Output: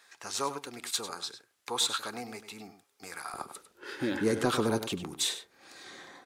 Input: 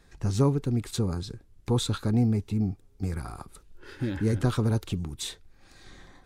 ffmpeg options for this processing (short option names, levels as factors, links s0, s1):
-filter_complex "[0:a]asetnsamples=n=441:p=0,asendcmd='3.34 highpass f 350',highpass=1000,asoftclip=type=tanh:threshold=0.0944,asplit=2[s0][s1];[s1]adelay=99.13,volume=0.282,highshelf=f=4000:g=-2.23[s2];[s0][s2]amix=inputs=2:normalize=0,volume=1.88"